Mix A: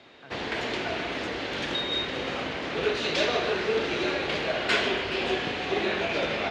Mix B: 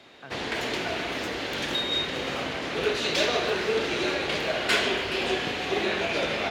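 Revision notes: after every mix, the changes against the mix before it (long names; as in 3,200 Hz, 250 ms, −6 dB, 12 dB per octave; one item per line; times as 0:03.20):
speech +5.5 dB
background: remove high-frequency loss of the air 81 metres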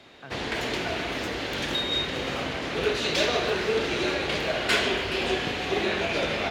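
master: add low-shelf EQ 110 Hz +8 dB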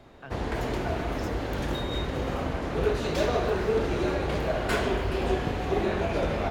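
background: remove meter weighting curve D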